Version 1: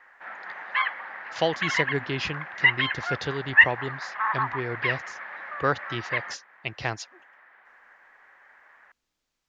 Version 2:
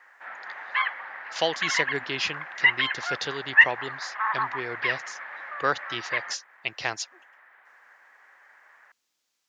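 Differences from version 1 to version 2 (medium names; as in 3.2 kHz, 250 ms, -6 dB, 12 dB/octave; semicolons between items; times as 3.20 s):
speech: add treble shelf 3.5 kHz +8.5 dB; master: add high-pass 430 Hz 6 dB/octave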